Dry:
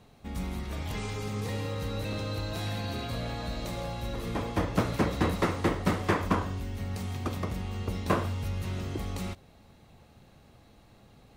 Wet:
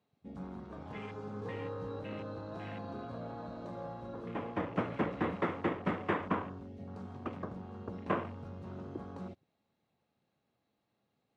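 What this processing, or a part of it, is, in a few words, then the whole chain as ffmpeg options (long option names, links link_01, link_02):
over-cleaned archive recording: -filter_complex "[0:a]highpass=160,lowpass=5400,afwtdn=0.00891,asettb=1/sr,asplit=3[link_01][link_02][link_03];[link_01]atrim=end=1.404[link_04];[link_02]atrim=start=1.4:end=2,asetpts=PTS-STARTPTS,afade=type=in:duration=0.004:curve=qsin,afade=type=out:start_time=0.596:duration=0.004:curve=qsin,asplit=2[link_05][link_06];[link_06]adelay=17,volume=-3dB[link_07];[link_05][link_07]amix=inputs=2:normalize=0,atrim=end_sample=26460[link_08];[link_03]atrim=start=1.996[link_09];[link_04][link_08]acrossfade=duration=0.004:curve1=hsin:curve2=qsin[link_10];[link_10][link_09]acrossfade=duration=0.004:curve1=qsin:curve2=hsin,volume=-5dB"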